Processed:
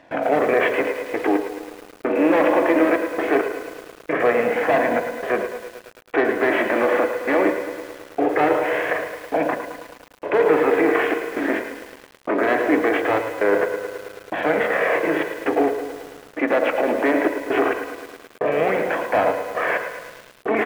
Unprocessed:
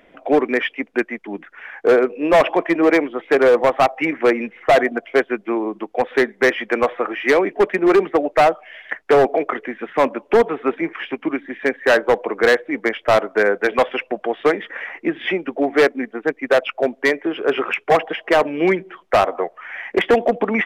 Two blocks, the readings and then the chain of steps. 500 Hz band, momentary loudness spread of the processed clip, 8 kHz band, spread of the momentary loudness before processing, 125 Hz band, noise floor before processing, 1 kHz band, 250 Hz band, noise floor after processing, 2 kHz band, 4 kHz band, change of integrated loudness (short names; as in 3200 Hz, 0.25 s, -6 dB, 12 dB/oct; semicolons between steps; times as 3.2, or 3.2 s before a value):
-3.0 dB, 15 LU, n/a, 10 LU, -4.0 dB, -55 dBFS, -2.5 dB, -1.5 dB, -48 dBFS, -2.5 dB, -7.5 dB, -2.5 dB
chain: per-bin compression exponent 0.4; LPF 2200 Hz 12 dB/oct; gate with hold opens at -12 dBFS; HPF 92 Hz 12 dB/oct; limiter -7.5 dBFS, peak gain reduction 10.5 dB; crossover distortion -48.5 dBFS; flange 0.21 Hz, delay 1.1 ms, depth 2.6 ms, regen -35%; step gate "xxxx.x..." 66 bpm -60 dB; on a send: feedback echo 0.11 s, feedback 41%, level -10 dB; on the sum: FDN reverb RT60 0.3 s, low-frequency decay 1.45×, high-frequency decay 0.35×, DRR 9.5 dB; lo-fi delay 0.108 s, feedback 80%, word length 6-bit, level -12 dB